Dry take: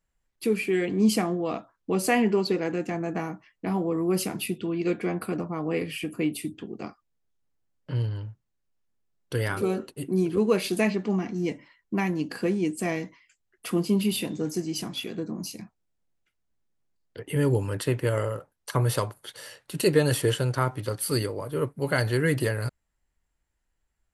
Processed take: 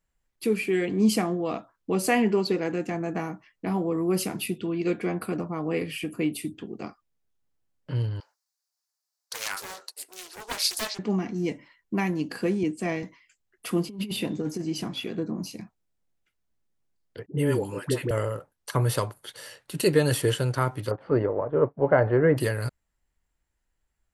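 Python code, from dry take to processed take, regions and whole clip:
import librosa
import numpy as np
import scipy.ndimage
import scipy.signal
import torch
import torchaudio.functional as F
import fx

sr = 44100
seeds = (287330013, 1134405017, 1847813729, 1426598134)

y = fx.chain(x, sr, fx.highpass(hz=730.0, slope=24),
    fx.high_shelf_res(hz=3800.0, db=7.5, q=3.0),
    fx.doppler_dist(depth_ms=0.88), at=(8.2, 10.99))
y = fx.chain(y, sr, fx.air_absorb(metres=61.0),
    fx.band_widen(depth_pct=40), at=(12.63, 13.03))
y = fx.chain(y, sr, fx.high_shelf(hz=5000.0, db=-10.0),
    fx.over_compress(threshold_db=-28.0, ratio=-0.5), at=(13.86, 15.61))
y = fx.chain(y, sr, fx.highpass(hz=130.0, slope=24),
    fx.dispersion(late='highs', ms=102.0, hz=620.0), at=(17.26, 18.11))
y = fx.chain(y, sr, fx.law_mismatch(coded='A'),
    fx.bessel_lowpass(hz=1400.0, order=4),
    fx.peak_eq(hz=670.0, db=11.0, octaves=1.7), at=(20.91, 22.37))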